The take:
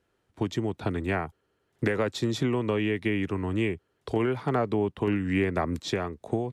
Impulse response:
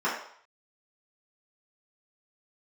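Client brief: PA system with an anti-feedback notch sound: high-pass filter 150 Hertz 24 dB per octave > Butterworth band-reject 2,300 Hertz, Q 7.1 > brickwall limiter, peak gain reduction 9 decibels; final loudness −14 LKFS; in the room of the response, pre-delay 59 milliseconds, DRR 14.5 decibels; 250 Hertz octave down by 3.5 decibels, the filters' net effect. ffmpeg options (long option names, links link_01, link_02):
-filter_complex "[0:a]equalizer=frequency=250:width_type=o:gain=-4.5,asplit=2[link_01][link_02];[1:a]atrim=start_sample=2205,adelay=59[link_03];[link_02][link_03]afir=irnorm=-1:irlink=0,volume=-27.5dB[link_04];[link_01][link_04]amix=inputs=2:normalize=0,highpass=frequency=150:width=0.5412,highpass=frequency=150:width=1.3066,asuperstop=centerf=2300:order=8:qfactor=7.1,volume=20.5dB,alimiter=limit=-4dB:level=0:latency=1"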